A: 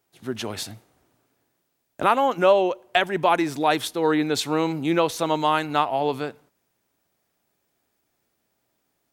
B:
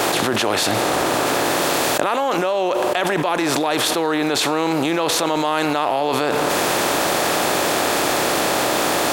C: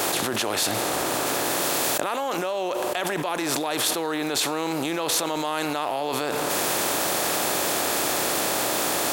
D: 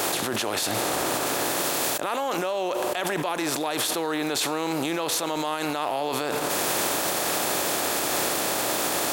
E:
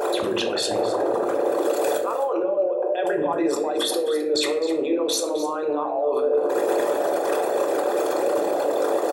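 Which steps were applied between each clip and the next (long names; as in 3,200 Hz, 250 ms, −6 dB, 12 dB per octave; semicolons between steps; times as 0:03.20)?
compressor on every frequency bin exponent 0.6; bass and treble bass −5 dB, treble +1 dB; envelope flattener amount 100%; level −7 dB
high-shelf EQ 6,300 Hz +10 dB; level −7.5 dB
brickwall limiter −15.5 dBFS, peak gain reduction 7.5 dB
spectral envelope exaggerated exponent 3; single-tap delay 261 ms −13.5 dB; convolution reverb RT60 0.75 s, pre-delay 3 ms, DRR 1.5 dB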